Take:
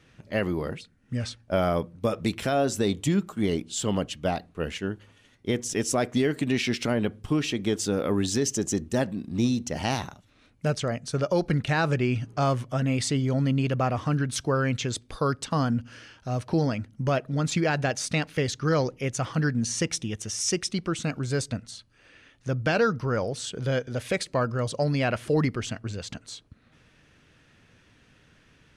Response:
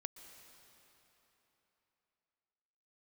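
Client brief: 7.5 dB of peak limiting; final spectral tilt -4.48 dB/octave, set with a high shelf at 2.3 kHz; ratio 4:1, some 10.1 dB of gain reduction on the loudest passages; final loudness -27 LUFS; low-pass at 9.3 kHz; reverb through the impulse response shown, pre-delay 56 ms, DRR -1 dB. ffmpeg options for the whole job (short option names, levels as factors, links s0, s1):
-filter_complex "[0:a]lowpass=9300,highshelf=f=2300:g=3,acompressor=threshold=0.0251:ratio=4,alimiter=level_in=1.58:limit=0.0631:level=0:latency=1,volume=0.631,asplit=2[s0][s1];[1:a]atrim=start_sample=2205,adelay=56[s2];[s1][s2]afir=irnorm=-1:irlink=0,volume=1.68[s3];[s0][s3]amix=inputs=2:normalize=0,volume=2.37"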